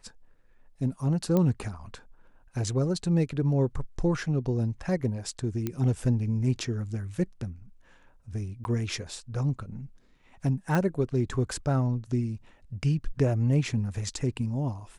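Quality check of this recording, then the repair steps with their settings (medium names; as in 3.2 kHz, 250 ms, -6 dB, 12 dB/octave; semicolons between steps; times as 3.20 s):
1.37 s: pop -14 dBFS
5.67 s: pop -16 dBFS
8.64–8.65 s: dropout 11 ms
10.75 s: pop -14 dBFS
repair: de-click; interpolate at 8.64 s, 11 ms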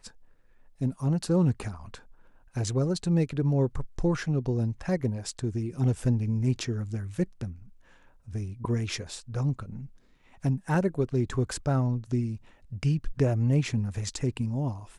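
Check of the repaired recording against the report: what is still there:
nothing left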